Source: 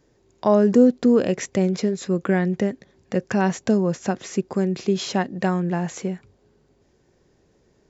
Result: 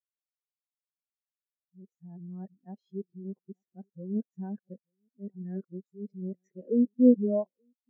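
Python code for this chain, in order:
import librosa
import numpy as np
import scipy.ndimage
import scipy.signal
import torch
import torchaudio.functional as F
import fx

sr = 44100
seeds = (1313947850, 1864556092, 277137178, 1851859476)

y = np.flip(x).copy()
y = y + 10.0 ** (-18.0 / 20.0) * np.pad(y, (int(880 * sr / 1000.0), 0))[:len(y)]
y = fx.spectral_expand(y, sr, expansion=2.5)
y = F.gain(torch.from_numpy(y), -4.0).numpy()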